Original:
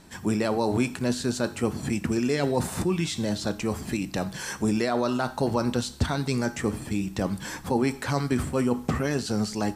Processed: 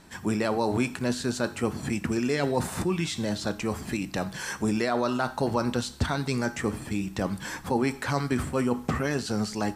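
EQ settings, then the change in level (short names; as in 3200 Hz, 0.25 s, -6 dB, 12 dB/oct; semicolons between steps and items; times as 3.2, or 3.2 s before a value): bell 1500 Hz +3.5 dB 2 oct; -2.0 dB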